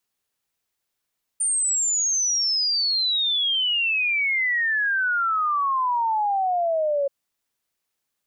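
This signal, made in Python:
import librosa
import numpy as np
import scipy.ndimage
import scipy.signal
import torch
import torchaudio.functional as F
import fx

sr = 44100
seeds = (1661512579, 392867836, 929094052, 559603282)

y = fx.ess(sr, length_s=5.68, from_hz=9100.0, to_hz=550.0, level_db=-19.5)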